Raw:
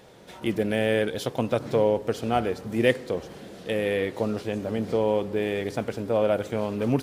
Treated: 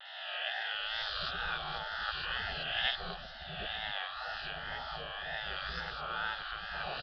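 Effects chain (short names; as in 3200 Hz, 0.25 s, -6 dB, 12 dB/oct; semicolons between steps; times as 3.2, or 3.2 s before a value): spectral swells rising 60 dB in 1.75 s; low shelf 180 Hz +8.5 dB; spectral gate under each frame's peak -20 dB weak; fixed phaser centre 1500 Hz, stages 8; three bands offset in time mids, highs, lows 50/750 ms, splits 580/3400 Hz; downsampling 11025 Hz; wow and flutter 80 cents; gain +3 dB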